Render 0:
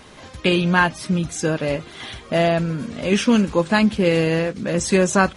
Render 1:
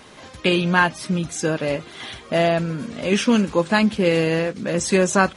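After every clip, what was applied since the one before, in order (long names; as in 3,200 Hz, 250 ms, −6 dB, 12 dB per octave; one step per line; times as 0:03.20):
low-shelf EQ 87 Hz −10 dB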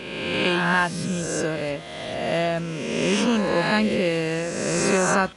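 peak hold with a rise ahead of every peak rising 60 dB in 1.65 s
level −6 dB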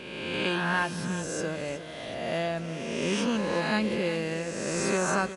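single-tap delay 365 ms −13 dB
level −6.5 dB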